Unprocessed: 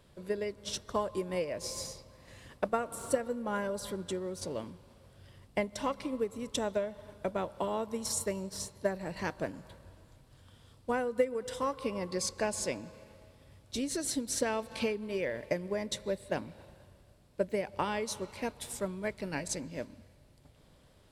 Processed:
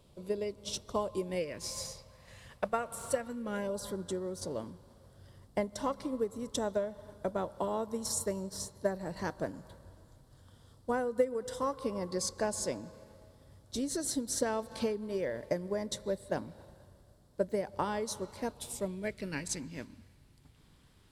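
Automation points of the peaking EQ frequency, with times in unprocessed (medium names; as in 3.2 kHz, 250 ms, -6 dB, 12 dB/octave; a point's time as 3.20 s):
peaking EQ -12 dB 0.63 oct
1.21 s 1.7 kHz
1.81 s 310 Hz
3.15 s 310 Hz
3.83 s 2.5 kHz
18.45 s 2.5 kHz
19.49 s 580 Hz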